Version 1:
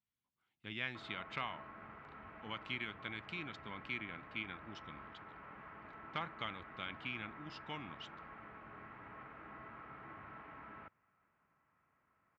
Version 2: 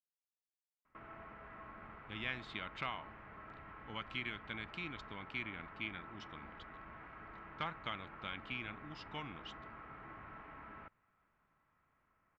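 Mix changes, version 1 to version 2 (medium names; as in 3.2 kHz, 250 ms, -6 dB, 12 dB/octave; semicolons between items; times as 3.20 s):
speech: entry +1.45 s; master: remove high-pass 79 Hz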